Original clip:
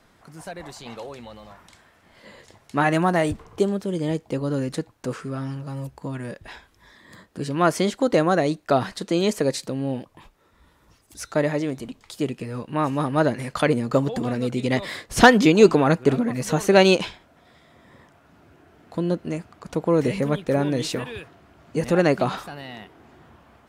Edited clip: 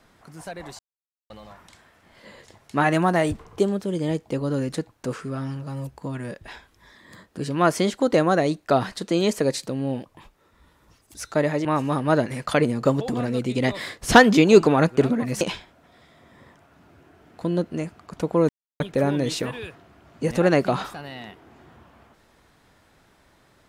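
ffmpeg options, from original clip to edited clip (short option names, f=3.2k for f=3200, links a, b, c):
-filter_complex "[0:a]asplit=7[a][b][c][d][e][f][g];[a]atrim=end=0.79,asetpts=PTS-STARTPTS,afade=t=out:st=0.786:d=0.004:c=hsin[h];[b]atrim=start=0.79:end=1.3,asetpts=PTS-STARTPTS,volume=0[i];[c]atrim=start=1.3:end=11.652,asetpts=PTS-STARTPTS,afade=t=in:d=0.004:c=hsin[j];[d]atrim=start=12.728:end=16.492[k];[e]atrim=start=16.938:end=20.02,asetpts=PTS-STARTPTS,afade=t=out:st=3.078:d=0.004:c=hsin[l];[f]atrim=start=20.02:end=20.33,asetpts=PTS-STARTPTS,volume=0[m];[g]atrim=start=20.33,asetpts=PTS-STARTPTS,afade=t=in:d=0.004:c=hsin[n];[h][i][j]concat=n=3:v=0:a=1[o];[o][k]acrossfade=d=0.004:c1=hsin:c2=hsin[p];[l][m][n]concat=n=3:v=0:a=1[q];[p][q]acrossfade=d=0.004:c1=hsin:c2=hsin"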